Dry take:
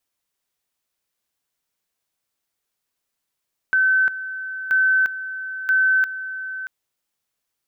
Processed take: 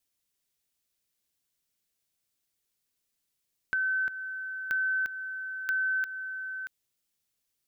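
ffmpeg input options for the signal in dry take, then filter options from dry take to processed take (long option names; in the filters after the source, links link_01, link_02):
-f lavfi -i "aevalsrc='pow(10,(-14-13*gte(mod(t,0.98),0.35))/20)*sin(2*PI*1530*t)':duration=2.94:sample_rate=44100"
-af "equalizer=frequency=980:width_type=o:width=2.2:gain=-9,acompressor=threshold=-29dB:ratio=2.5"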